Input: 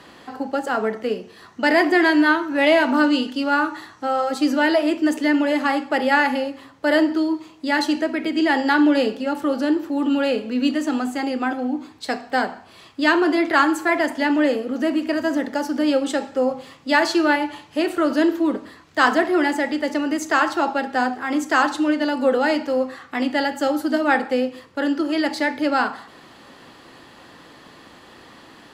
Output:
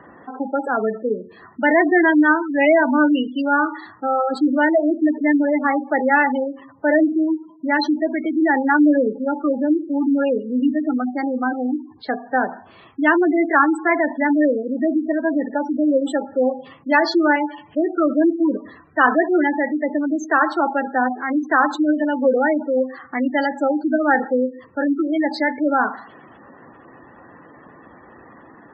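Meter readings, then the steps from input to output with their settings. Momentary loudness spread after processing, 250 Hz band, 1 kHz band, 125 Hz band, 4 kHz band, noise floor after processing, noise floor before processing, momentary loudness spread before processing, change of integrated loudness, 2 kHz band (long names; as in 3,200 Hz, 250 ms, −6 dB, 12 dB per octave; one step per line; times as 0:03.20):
9 LU, +2.0 dB, +1.5 dB, can't be measured, −8.0 dB, −47 dBFS, −47 dBFS, 9 LU, +1.5 dB, +1.0 dB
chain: low-pass that shuts in the quiet parts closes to 2,000 Hz, open at −17 dBFS
gate on every frequency bin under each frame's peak −15 dB strong
level +2 dB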